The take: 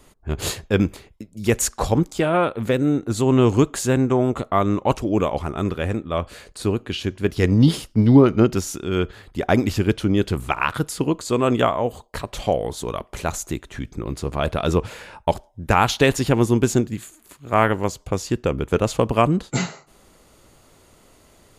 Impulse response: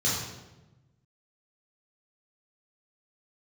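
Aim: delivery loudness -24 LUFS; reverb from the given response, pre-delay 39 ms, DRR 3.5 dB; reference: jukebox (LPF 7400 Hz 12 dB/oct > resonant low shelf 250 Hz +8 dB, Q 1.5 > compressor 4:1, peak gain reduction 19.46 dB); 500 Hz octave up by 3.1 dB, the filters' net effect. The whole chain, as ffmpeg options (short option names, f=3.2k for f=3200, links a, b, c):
-filter_complex "[0:a]equalizer=f=500:t=o:g=6,asplit=2[a][b];[1:a]atrim=start_sample=2205,adelay=39[c];[b][c]afir=irnorm=-1:irlink=0,volume=-14dB[d];[a][d]amix=inputs=2:normalize=0,lowpass=7.4k,lowshelf=f=250:t=q:w=1.5:g=8,acompressor=threshold=-18dB:ratio=4,volume=-3dB"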